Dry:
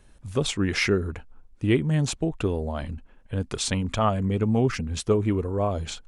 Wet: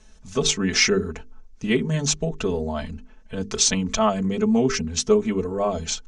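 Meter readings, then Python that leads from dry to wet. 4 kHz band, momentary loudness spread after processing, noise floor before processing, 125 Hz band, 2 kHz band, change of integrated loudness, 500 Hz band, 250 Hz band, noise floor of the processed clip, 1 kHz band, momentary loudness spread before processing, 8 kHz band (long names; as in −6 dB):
+7.5 dB, 14 LU, −54 dBFS, −3.5 dB, +3.5 dB, +3.5 dB, +3.5 dB, +2.5 dB, −49 dBFS, +2.0 dB, 10 LU, +11.0 dB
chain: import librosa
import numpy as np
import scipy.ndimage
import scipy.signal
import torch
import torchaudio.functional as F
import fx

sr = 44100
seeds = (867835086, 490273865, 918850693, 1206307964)

y = fx.lowpass_res(x, sr, hz=6200.0, q=3.8)
y = fx.hum_notches(y, sr, base_hz=50, count=9)
y = y + 0.92 * np.pad(y, (int(4.6 * sr / 1000.0), 0))[:len(y)]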